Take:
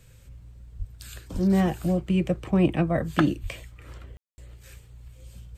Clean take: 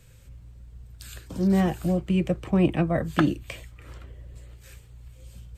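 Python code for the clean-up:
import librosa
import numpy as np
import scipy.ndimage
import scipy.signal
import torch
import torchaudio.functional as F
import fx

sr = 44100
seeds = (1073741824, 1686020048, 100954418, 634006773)

y = fx.highpass(x, sr, hz=140.0, slope=24, at=(0.78, 0.9), fade=0.02)
y = fx.highpass(y, sr, hz=140.0, slope=24, at=(1.33, 1.45), fade=0.02)
y = fx.highpass(y, sr, hz=140.0, slope=24, at=(3.42, 3.54), fade=0.02)
y = fx.fix_ambience(y, sr, seeds[0], print_start_s=0.0, print_end_s=0.5, start_s=4.17, end_s=4.38)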